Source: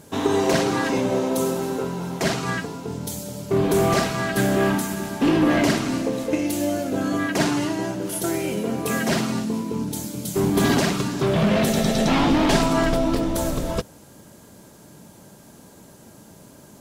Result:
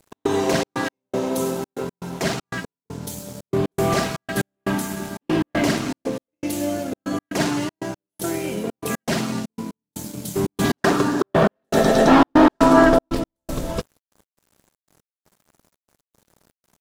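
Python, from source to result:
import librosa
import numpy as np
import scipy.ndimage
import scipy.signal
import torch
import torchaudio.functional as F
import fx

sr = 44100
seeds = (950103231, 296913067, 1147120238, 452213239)

y = np.sign(x) * np.maximum(np.abs(x) - 10.0 ** (-42.0 / 20.0), 0.0)
y = fx.spec_box(y, sr, start_s=10.81, length_s=2.28, low_hz=240.0, high_hz=1900.0, gain_db=9)
y = fx.step_gate(y, sr, bpm=119, pattern='x.xxx.x..xxxx.', floor_db=-60.0, edge_ms=4.5)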